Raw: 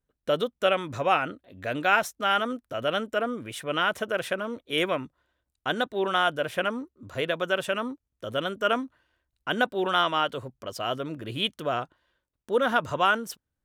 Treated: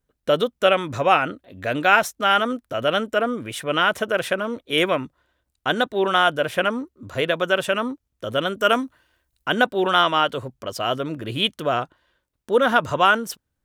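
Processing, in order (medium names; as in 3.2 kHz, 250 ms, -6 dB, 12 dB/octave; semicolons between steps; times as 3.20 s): 8.59–9.48 s: treble shelf 6.4 kHz +10 dB; trim +6 dB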